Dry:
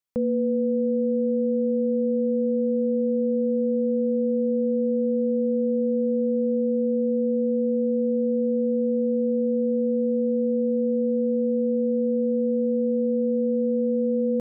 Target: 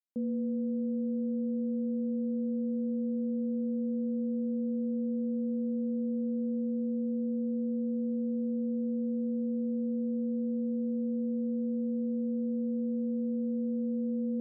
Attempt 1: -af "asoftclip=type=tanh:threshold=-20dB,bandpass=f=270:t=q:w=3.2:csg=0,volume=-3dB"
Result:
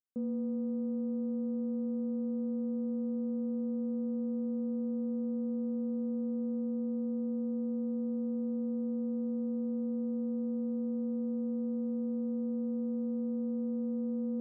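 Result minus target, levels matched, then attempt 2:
soft clip: distortion +18 dB
-af "asoftclip=type=tanh:threshold=-9.5dB,bandpass=f=270:t=q:w=3.2:csg=0,volume=-3dB"

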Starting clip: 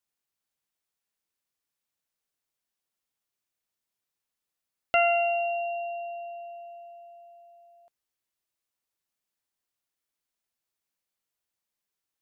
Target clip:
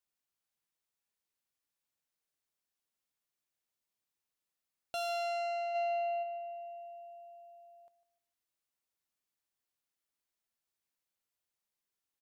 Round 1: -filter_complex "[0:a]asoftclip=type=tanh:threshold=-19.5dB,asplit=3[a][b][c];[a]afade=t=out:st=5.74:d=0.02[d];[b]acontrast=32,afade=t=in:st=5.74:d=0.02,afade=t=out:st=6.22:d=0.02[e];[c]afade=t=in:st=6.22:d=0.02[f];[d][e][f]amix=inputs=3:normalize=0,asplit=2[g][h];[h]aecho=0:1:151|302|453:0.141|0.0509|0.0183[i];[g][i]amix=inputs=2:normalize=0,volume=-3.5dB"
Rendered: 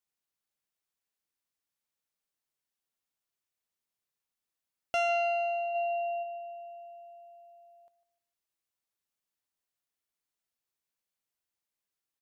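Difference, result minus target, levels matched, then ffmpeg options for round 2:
soft clip: distortion -10 dB
-filter_complex "[0:a]asoftclip=type=tanh:threshold=-31dB,asplit=3[a][b][c];[a]afade=t=out:st=5.74:d=0.02[d];[b]acontrast=32,afade=t=in:st=5.74:d=0.02,afade=t=out:st=6.22:d=0.02[e];[c]afade=t=in:st=6.22:d=0.02[f];[d][e][f]amix=inputs=3:normalize=0,asplit=2[g][h];[h]aecho=0:1:151|302|453:0.141|0.0509|0.0183[i];[g][i]amix=inputs=2:normalize=0,volume=-3.5dB"

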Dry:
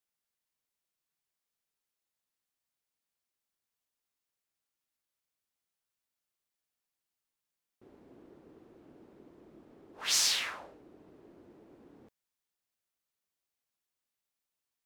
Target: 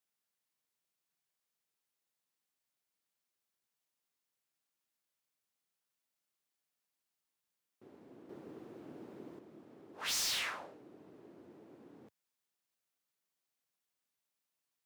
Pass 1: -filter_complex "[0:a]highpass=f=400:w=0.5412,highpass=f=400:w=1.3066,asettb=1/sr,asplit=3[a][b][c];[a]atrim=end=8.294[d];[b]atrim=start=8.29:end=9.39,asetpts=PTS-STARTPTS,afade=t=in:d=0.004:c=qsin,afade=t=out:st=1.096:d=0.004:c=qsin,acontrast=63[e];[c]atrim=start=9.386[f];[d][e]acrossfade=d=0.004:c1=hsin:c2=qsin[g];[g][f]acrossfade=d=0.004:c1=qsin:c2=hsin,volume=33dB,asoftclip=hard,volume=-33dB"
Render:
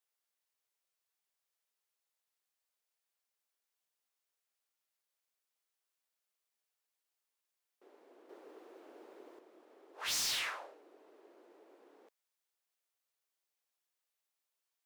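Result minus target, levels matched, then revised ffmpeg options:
125 Hz band -11.5 dB
-filter_complex "[0:a]highpass=f=100:w=0.5412,highpass=f=100:w=1.3066,asettb=1/sr,asplit=3[a][b][c];[a]atrim=end=8.294[d];[b]atrim=start=8.29:end=9.39,asetpts=PTS-STARTPTS,afade=t=in:d=0.004:c=qsin,afade=t=out:st=1.096:d=0.004:c=qsin,acontrast=63[e];[c]atrim=start=9.386[f];[d][e]acrossfade=d=0.004:c1=hsin:c2=qsin[g];[g][f]acrossfade=d=0.004:c1=qsin:c2=hsin,volume=33dB,asoftclip=hard,volume=-33dB"

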